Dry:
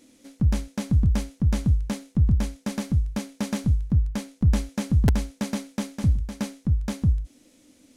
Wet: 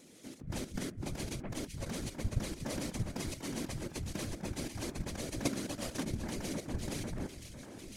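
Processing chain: HPF 270 Hz 6 dB/oct; negative-ratio compressor -34 dBFS, ratio -0.5; echo with dull and thin repeats by turns 0.251 s, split 2000 Hz, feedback 83%, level -6 dB; level quantiser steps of 10 dB; whisperiser; gain +2 dB

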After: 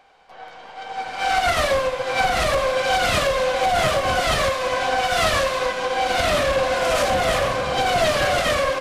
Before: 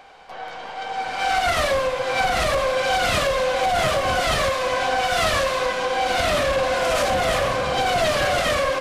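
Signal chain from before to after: upward expander 1.5:1, over -38 dBFS; gain +2 dB

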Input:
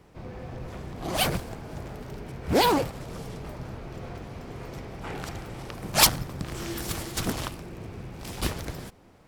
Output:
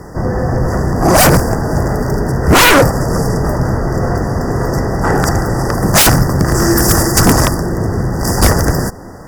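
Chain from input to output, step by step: FFT band-reject 2000–4600 Hz; sine folder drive 20 dB, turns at -3.5 dBFS

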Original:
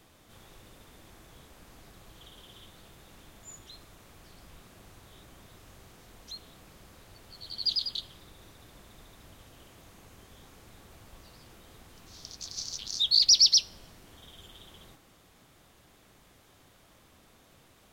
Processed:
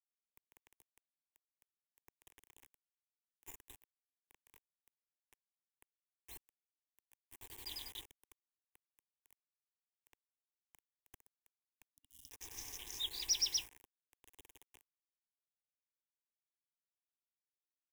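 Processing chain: bit-crush 7-bit; fixed phaser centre 900 Hz, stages 8; spectral gain 11.87–12.3, 290–2800 Hz -21 dB; gain -3.5 dB

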